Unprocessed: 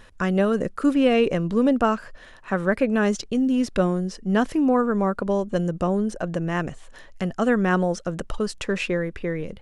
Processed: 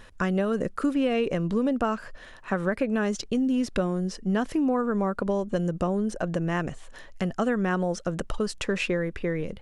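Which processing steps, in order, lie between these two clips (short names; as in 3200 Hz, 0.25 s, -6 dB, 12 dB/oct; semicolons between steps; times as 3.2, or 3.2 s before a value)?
compressor 4:1, threshold -22 dBFS, peak gain reduction 7.5 dB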